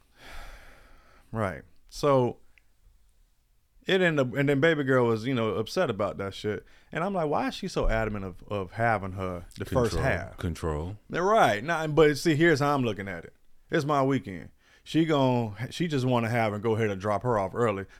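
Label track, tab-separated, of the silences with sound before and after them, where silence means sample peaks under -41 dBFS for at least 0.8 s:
2.580000	3.880000	silence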